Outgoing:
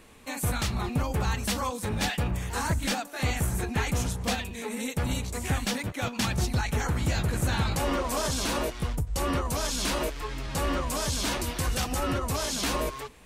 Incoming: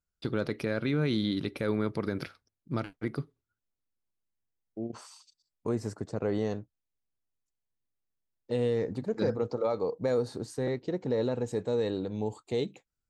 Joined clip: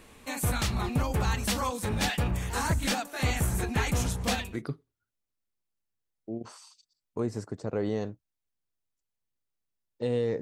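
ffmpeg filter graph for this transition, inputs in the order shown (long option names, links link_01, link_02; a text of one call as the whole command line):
ffmpeg -i cue0.wav -i cue1.wav -filter_complex "[0:a]apad=whole_dur=10.41,atrim=end=10.41,atrim=end=4.62,asetpts=PTS-STARTPTS[link_01];[1:a]atrim=start=2.87:end=8.9,asetpts=PTS-STARTPTS[link_02];[link_01][link_02]acrossfade=duration=0.24:curve1=tri:curve2=tri" out.wav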